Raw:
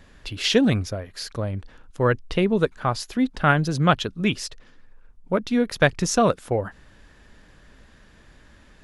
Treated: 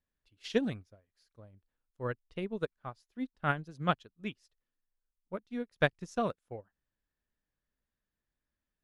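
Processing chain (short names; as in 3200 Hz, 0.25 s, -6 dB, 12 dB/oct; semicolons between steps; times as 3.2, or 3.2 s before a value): 1.29–2.09 dynamic EQ 2700 Hz, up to -4 dB, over -43 dBFS, Q 0.77; upward expander 2.5:1, over -33 dBFS; gain -8 dB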